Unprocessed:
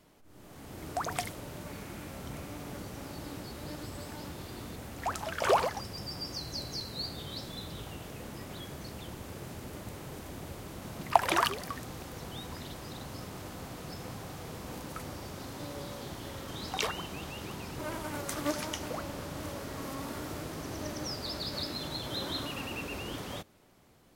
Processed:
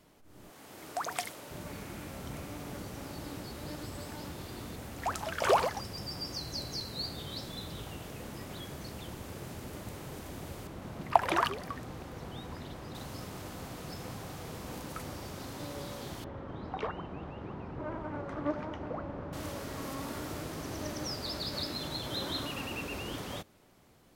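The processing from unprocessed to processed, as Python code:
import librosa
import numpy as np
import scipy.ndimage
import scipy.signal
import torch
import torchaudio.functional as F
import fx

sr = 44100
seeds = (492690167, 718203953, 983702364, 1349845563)

y = fx.highpass(x, sr, hz=500.0, slope=6, at=(0.5, 1.51))
y = fx.high_shelf(y, sr, hz=3400.0, db=-10.0, at=(10.67, 12.95))
y = fx.lowpass(y, sr, hz=1300.0, slope=12, at=(16.24, 19.33))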